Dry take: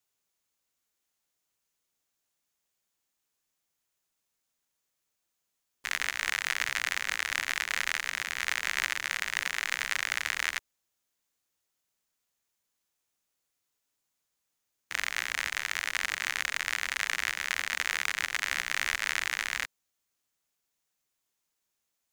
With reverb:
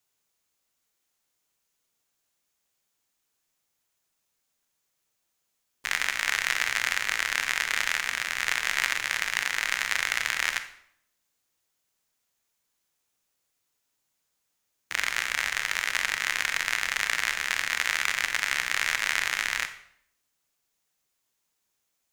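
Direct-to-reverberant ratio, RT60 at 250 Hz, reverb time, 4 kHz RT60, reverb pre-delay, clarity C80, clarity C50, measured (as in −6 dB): 8.5 dB, 0.80 s, 0.65 s, 0.55 s, 25 ms, 14.0 dB, 11.0 dB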